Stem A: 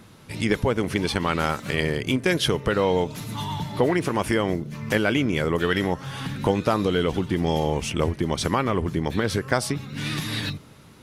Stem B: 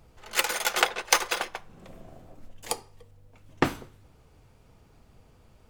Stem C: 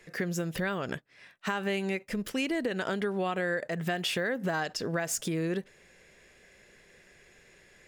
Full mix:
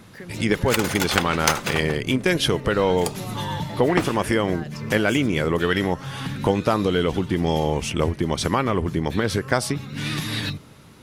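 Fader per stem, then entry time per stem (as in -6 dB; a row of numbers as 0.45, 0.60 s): +1.5, +0.5, -7.5 dB; 0.00, 0.35, 0.00 s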